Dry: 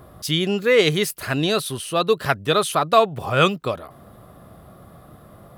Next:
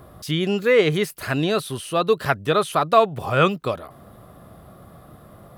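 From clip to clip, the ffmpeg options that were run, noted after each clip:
ffmpeg -i in.wav -filter_complex "[0:a]acrossover=split=2600[link_01][link_02];[link_02]acompressor=threshold=-32dB:ratio=4:attack=1:release=60[link_03];[link_01][link_03]amix=inputs=2:normalize=0" out.wav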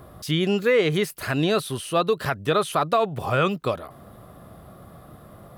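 ffmpeg -i in.wav -af "alimiter=limit=-11dB:level=0:latency=1:release=91" out.wav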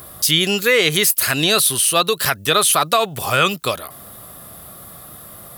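ffmpeg -i in.wav -af "crystalizer=i=9.5:c=0" out.wav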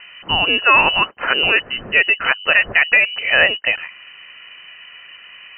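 ffmpeg -i in.wav -af "lowpass=frequency=2600:width_type=q:width=0.5098,lowpass=frequency=2600:width_type=q:width=0.6013,lowpass=frequency=2600:width_type=q:width=0.9,lowpass=frequency=2600:width_type=q:width=2.563,afreqshift=-3100,volume=3.5dB" out.wav

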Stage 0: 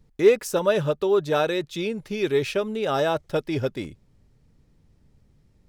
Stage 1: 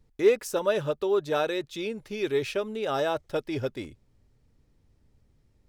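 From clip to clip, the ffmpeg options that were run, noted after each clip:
ffmpeg -i in.wav -af "equalizer=frequency=170:width_type=o:width=0.46:gain=-7.5,volume=-4dB" out.wav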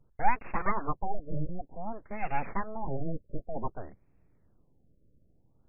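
ffmpeg -i in.wav -af "aeval=exprs='abs(val(0))':channel_layout=same,afftfilt=real='re*lt(b*sr/1024,610*pow(2800/610,0.5+0.5*sin(2*PI*0.54*pts/sr)))':imag='im*lt(b*sr/1024,610*pow(2800/610,0.5+0.5*sin(2*PI*0.54*pts/sr)))':win_size=1024:overlap=0.75" out.wav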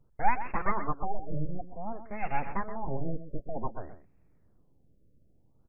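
ffmpeg -i in.wav -af "aecho=1:1:125:0.266" out.wav

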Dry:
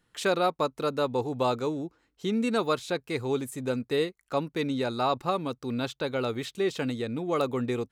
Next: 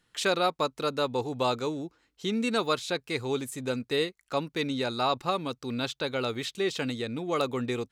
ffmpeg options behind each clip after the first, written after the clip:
ffmpeg -i in.wav -af "equalizer=frequency=4400:width=0.41:gain=6.5,volume=-2dB" out.wav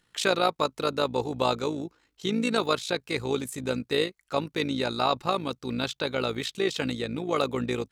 ffmpeg -i in.wav -af "tremolo=f=55:d=0.621,volume=4.5dB" out.wav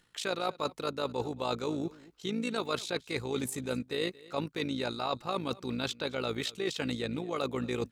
ffmpeg -i in.wav -af "areverse,acompressor=threshold=-37dB:ratio=4,areverse,aecho=1:1:225:0.0891,volume=5dB" out.wav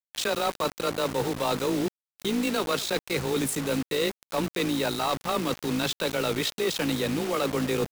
ffmpeg -i in.wav -af "afreqshift=19,acrusher=bits=6:mix=0:aa=0.000001,asoftclip=type=tanh:threshold=-27.5dB,volume=8.5dB" out.wav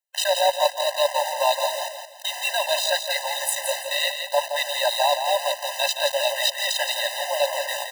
ffmpeg -i in.wav -af "aecho=1:1:169|338|507|676:0.447|0.147|0.0486|0.0161,afftfilt=real='re*eq(mod(floor(b*sr/1024/520),2),1)':imag='im*eq(mod(floor(b*sr/1024/520),2),1)':win_size=1024:overlap=0.75,volume=9dB" out.wav

